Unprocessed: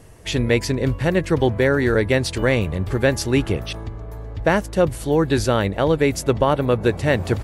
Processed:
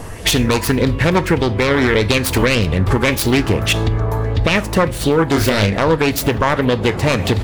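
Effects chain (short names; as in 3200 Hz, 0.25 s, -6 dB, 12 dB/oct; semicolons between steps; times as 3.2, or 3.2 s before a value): self-modulated delay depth 0.38 ms; compressor, threshold -27 dBFS, peak gain reduction 14 dB; 5.27–5.8 doubler 29 ms -5.5 dB; on a send at -12 dB: reverb, pre-delay 4 ms; on the sum: maximiser +19 dB; LFO bell 1.7 Hz 920–4100 Hz +8 dB; gain -4 dB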